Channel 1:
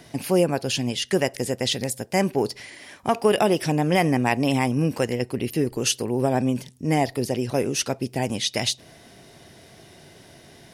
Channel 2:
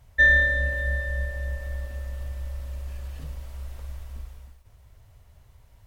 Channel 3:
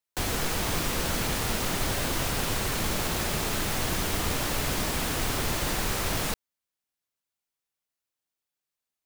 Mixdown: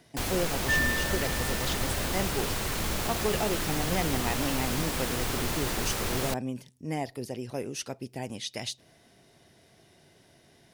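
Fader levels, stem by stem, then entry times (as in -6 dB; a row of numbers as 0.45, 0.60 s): -11.0, -10.0, -2.5 dB; 0.00, 0.50, 0.00 s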